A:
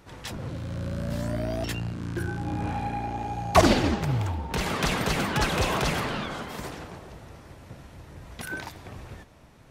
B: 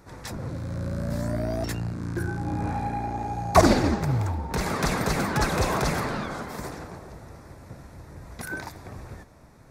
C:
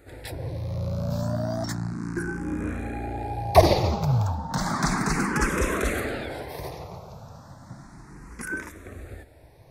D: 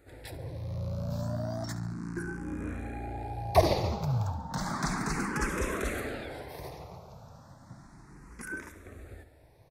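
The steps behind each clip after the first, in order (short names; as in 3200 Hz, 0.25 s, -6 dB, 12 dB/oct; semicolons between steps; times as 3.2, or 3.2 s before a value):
bell 3000 Hz -13.5 dB 0.47 oct; gain +1.5 dB
endless phaser +0.33 Hz; gain +3 dB
feedback echo 70 ms, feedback 52%, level -15 dB; gain -7 dB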